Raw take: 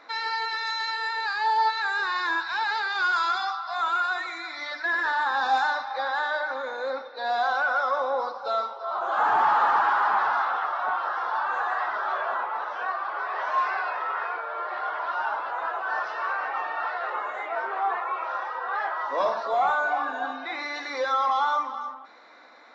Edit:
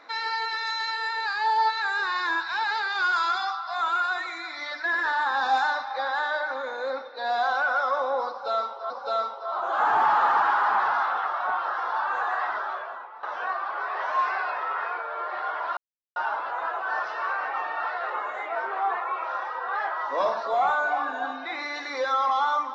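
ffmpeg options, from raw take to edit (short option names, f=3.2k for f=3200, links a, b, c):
-filter_complex "[0:a]asplit=4[a][b][c][d];[a]atrim=end=8.902[e];[b]atrim=start=8.288:end=12.62,asetpts=PTS-STARTPTS,afade=t=out:st=3.642:d=0.69:c=qua:silence=0.199526[f];[c]atrim=start=12.62:end=15.16,asetpts=PTS-STARTPTS,afade=t=in:d=0.004:c=hsin:silence=0.199526,afade=t=out:st=2.536:d=0.004:c=hsin,apad=pad_dur=0.39[g];[d]atrim=start=15.16,asetpts=PTS-STARTPTS,afade=t=in:d=0.004:c=hsin[h];[f][g][h]concat=n=3:v=0:a=1[i];[e][i]acrossfade=d=0.004:c1=hsin:c2=hsin"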